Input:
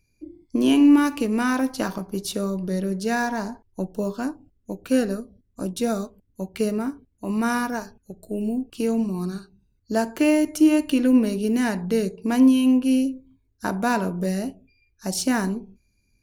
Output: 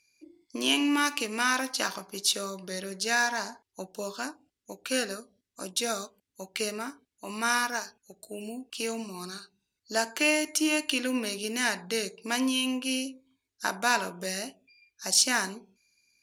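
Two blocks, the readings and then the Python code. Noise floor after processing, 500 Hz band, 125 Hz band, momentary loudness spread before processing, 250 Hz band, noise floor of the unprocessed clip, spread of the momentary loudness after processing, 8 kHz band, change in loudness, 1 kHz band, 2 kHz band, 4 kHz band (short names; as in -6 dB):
-85 dBFS, -7.5 dB, -16.0 dB, 15 LU, -13.5 dB, -68 dBFS, 16 LU, +5.5 dB, -6.0 dB, -2.5 dB, +2.5 dB, +6.5 dB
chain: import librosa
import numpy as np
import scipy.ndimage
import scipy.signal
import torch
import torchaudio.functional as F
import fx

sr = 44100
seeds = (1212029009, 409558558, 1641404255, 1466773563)

y = fx.bandpass_q(x, sr, hz=4700.0, q=0.56)
y = y * librosa.db_to_amplitude(7.0)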